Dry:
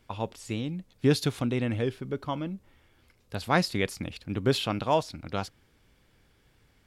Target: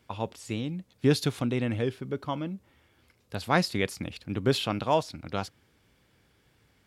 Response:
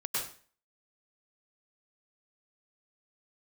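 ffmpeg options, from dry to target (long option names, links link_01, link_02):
-af "highpass=67"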